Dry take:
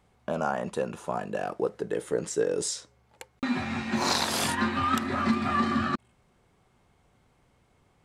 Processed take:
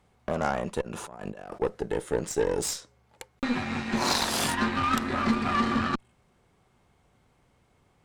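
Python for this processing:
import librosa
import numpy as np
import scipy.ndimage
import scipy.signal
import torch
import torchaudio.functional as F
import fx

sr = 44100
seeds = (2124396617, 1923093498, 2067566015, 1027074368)

y = fx.over_compress(x, sr, threshold_db=-42.0, ratio=-1.0, at=(0.81, 1.61))
y = fx.cheby_harmonics(y, sr, harmonics=(4, 6, 8), levels_db=(-18, -18, -18), full_scale_db=-11.5)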